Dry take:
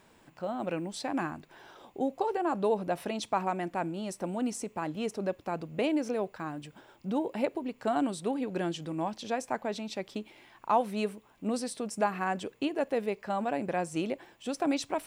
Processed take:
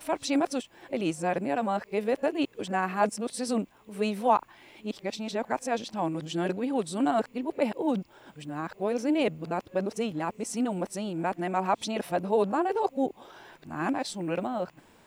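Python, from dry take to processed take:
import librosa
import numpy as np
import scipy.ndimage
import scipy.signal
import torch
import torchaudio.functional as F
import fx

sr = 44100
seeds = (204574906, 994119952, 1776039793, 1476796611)

y = np.flip(x).copy()
y = F.gain(torch.from_numpy(y), 3.0).numpy()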